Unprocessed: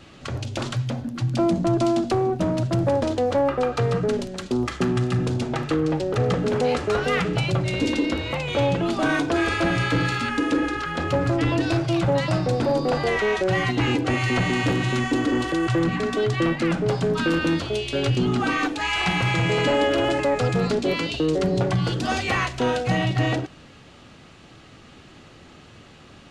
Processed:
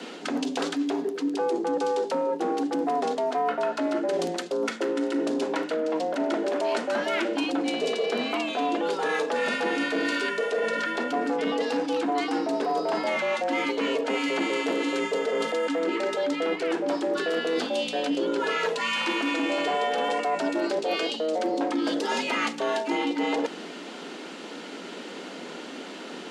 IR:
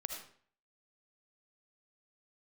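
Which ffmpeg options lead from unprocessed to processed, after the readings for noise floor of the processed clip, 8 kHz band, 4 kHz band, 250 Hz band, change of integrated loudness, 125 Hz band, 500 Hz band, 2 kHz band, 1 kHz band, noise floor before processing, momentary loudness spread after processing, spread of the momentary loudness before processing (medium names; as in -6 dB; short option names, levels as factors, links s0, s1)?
-39 dBFS, -3.0 dB, -2.5 dB, -5.0 dB, -4.0 dB, -27.5 dB, -2.5 dB, -3.5 dB, -1.0 dB, -48 dBFS, 6 LU, 4 LU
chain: -af "areverse,acompressor=threshold=0.02:ratio=5,areverse,afreqshift=160,volume=2.66"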